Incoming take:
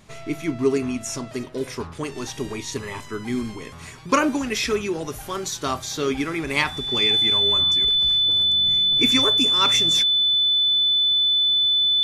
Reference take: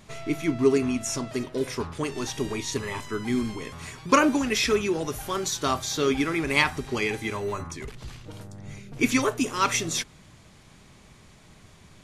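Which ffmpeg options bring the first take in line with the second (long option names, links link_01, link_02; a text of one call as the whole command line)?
ffmpeg -i in.wav -af "bandreject=frequency=3500:width=30" out.wav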